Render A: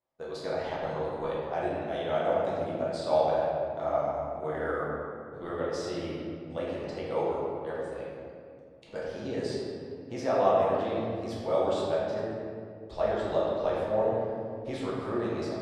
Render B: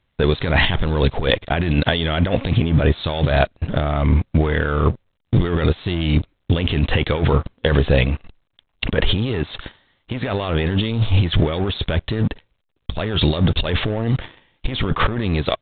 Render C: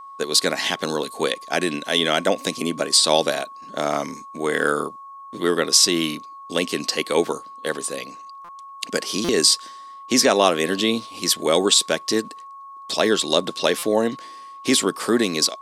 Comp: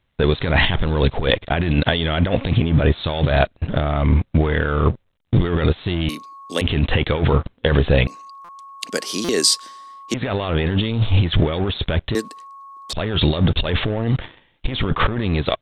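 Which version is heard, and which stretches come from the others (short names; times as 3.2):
B
6.09–6.61 from C
8.07–10.14 from C
12.15–12.93 from C
not used: A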